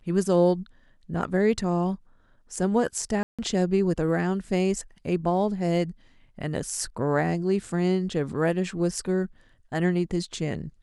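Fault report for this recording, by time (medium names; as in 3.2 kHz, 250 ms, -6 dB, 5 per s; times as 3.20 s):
3.23–3.39 s: dropout 156 ms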